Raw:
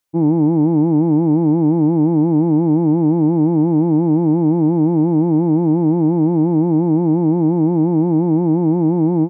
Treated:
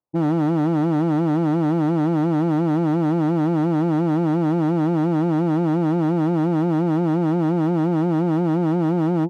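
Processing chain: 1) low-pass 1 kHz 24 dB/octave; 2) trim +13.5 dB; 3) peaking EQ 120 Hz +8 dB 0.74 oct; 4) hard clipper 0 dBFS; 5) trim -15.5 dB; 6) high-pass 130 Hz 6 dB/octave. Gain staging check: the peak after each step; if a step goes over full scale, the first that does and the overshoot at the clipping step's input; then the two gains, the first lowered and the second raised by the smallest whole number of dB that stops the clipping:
-6.5 dBFS, +7.0 dBFS, +8.0 dBFS, 0.0 dBFS, -15.5 dBFS, -12.0 dBFS; step 2, 8.0 dB; step 2 +5.5 dB, step 5 -7.5 dB

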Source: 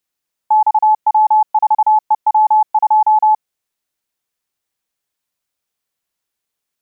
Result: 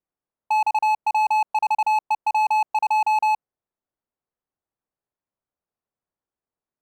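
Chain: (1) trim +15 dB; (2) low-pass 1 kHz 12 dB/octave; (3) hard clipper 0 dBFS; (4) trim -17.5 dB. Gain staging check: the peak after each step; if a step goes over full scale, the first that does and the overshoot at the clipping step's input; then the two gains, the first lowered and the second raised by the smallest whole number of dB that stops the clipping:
+8.0 dBFS, +6.0 dBFS, 0.0 dBFS, -17.5 dBFS; step 1, 6.0 dB; step 1 +9 dB, step 4 -11.5 dB

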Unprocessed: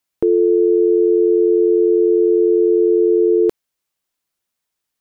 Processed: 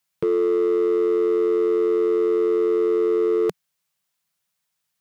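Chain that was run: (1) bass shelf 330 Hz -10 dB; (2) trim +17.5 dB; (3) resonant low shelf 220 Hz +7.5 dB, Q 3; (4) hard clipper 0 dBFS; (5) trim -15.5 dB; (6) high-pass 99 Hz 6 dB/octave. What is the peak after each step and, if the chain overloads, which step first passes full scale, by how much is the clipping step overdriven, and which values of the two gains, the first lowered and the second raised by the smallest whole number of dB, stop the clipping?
-11.5 dBFS, +6.0 dBFS, +6.5 dBFS, 0.0 dBFS, -15.5 dBFS, -14.5 dBFS; step 2, 6.5 dB; step 2 +10.5 dB, step 5 -8.5 dB

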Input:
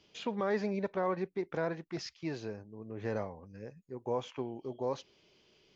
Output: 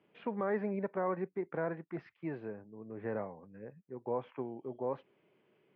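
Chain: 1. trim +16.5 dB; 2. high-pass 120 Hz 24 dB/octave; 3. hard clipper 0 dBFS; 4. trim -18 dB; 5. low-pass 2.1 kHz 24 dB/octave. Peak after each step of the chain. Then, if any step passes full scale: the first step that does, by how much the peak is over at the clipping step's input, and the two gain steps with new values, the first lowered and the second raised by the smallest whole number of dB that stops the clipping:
-3.5 dBFS, -5.0 dBFS, -5.0 dBFS, -23.0 dBFS, -23.5 dBFS; nothing clips

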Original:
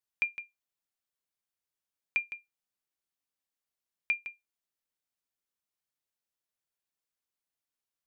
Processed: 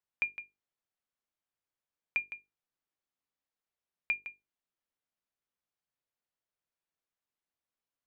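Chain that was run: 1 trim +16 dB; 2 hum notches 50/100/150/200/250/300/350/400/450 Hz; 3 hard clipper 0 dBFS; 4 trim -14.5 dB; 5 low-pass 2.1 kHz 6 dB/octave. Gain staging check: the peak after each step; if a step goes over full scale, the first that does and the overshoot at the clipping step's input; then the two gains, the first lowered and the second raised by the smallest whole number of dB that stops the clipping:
-2.5 dBFS, -2.5 dBFS, -2.5 dBFS, -17.0 dBFS, -20.0 dBFS; nothing clips

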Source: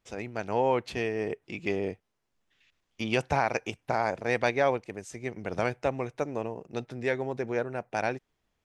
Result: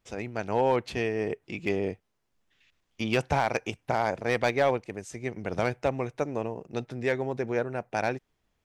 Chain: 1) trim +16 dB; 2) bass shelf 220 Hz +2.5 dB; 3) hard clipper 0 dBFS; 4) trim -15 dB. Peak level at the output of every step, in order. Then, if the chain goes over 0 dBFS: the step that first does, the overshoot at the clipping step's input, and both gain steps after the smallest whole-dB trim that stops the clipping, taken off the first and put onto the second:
+5.0 dBFS, +5.0 dBFS, 0.0 dBFS, -15.0 dBFS; step 1, 5.0 dB; step 1 +11 dB, step 4 -10 dB

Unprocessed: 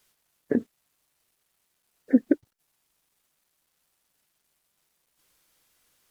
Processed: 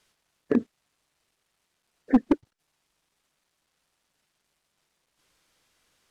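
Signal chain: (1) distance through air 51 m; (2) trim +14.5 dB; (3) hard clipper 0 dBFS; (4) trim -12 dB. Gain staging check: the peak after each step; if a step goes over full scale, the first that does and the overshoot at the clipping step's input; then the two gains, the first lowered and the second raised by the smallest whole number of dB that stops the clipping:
-6.5 dBFS, +8.0 dBFS, 0.0 dBFS, -12.0 dBFS; step 2, 8.0 dB; step 2 +6.5 dB, step 4 -4 dB

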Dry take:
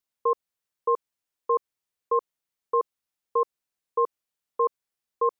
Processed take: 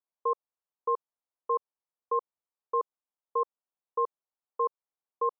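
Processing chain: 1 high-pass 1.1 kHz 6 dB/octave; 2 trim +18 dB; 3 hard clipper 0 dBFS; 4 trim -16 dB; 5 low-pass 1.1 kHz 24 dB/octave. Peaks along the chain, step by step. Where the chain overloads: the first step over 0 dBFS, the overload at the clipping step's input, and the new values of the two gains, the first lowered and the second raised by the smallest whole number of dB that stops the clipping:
-20.0 dBFS, -2.0 dBFS, -2.0 dBFS, -18.0 dBFS, -19.5 dBFS; nothing clips

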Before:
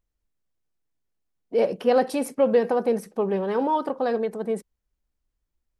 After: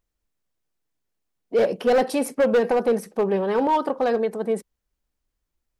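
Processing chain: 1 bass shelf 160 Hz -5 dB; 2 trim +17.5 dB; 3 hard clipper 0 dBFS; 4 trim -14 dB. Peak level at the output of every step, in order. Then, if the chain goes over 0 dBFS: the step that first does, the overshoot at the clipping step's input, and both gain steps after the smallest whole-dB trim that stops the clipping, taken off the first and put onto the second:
-9.5 dBFS, +8.0 dBFS, 0.0 dBFS, -14.0 dBFS; step 2, 8.0 dB; step 2 +9.5 dB, step 4 -6 dB

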